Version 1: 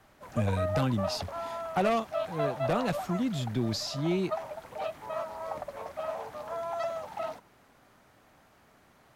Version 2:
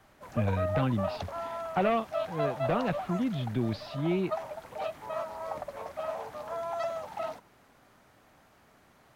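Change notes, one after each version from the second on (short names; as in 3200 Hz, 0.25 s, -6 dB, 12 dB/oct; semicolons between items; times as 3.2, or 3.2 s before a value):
speech: add LPF 3300 Hz 24 dB/oct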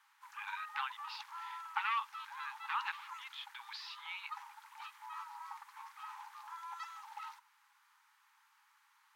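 background -6.0 dB; master: add brick-wall FIR high-pass 810 Hz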